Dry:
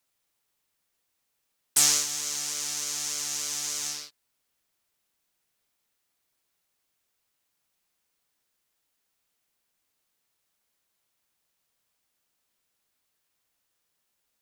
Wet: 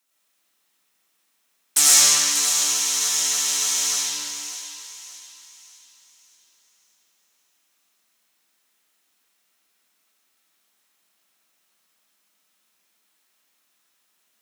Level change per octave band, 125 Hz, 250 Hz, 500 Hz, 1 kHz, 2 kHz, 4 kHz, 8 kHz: no reading, +5.0 dB, +6.5 dB, +10.0 dB, +9.5 dB, +9.5 dB, +9.5 dB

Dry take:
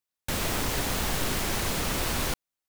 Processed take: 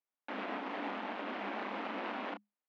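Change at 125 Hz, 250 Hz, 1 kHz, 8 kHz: under -25 dB, -8.0 dB, -5.0 dB, under -40 dB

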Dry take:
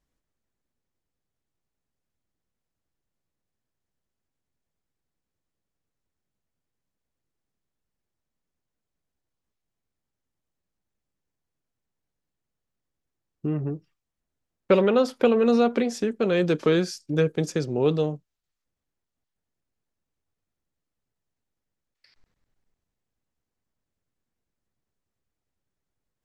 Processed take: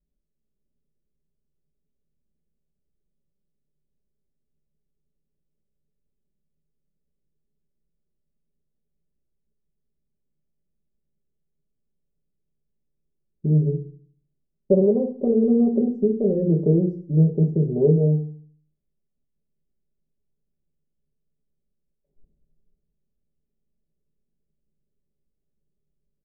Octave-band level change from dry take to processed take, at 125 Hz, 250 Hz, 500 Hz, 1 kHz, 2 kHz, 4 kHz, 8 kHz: +10.0 dB, +4.5 dB, +0.5 dB, -15.0 dB, under -40 dB, under -40 dB, under -30 dB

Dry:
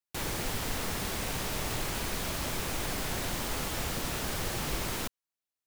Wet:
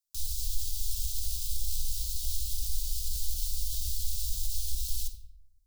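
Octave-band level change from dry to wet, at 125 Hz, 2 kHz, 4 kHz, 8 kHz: -2.5 dB, -26.5 dB, -2.5 dB, +1.0 dB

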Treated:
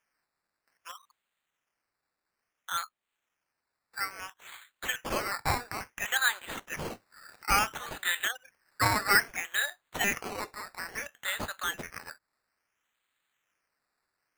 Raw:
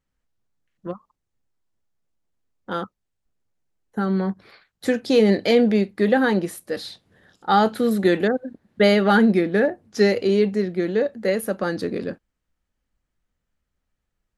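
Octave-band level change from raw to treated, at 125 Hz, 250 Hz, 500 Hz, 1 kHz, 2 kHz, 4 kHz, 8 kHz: -13.0 dB, -24.5 dB, -22.0 dB, -6.5 dB, -1.5 dB, -3.0 dB, +6.0 dB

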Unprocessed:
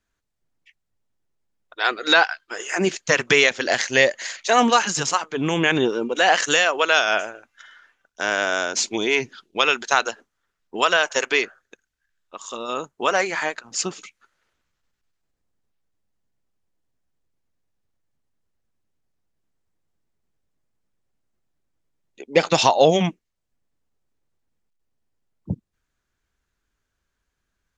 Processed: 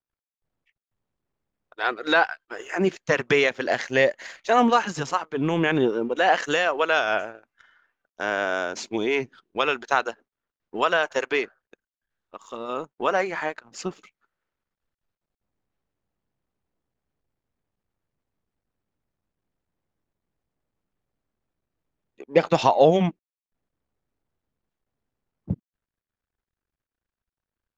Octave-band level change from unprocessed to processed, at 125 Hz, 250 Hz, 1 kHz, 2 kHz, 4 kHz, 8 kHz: -0.5 dB, -0.5 dB, -2.0 dB, -5.0 dB, -9.0 dB, -14.5 dB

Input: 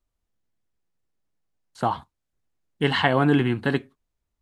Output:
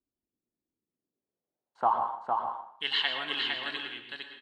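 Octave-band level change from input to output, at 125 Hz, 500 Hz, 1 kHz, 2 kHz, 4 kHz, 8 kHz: under -30 dB, -14.0 dB, -1.5 dB, -6.0 dB, +2.5 dB, no reading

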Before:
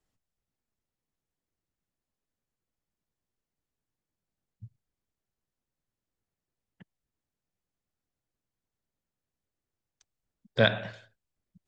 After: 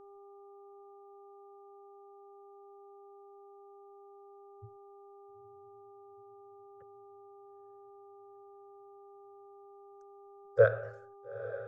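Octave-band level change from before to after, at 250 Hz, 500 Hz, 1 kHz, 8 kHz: under -15 dB, +3.0 dB, -2.0 dB, no reading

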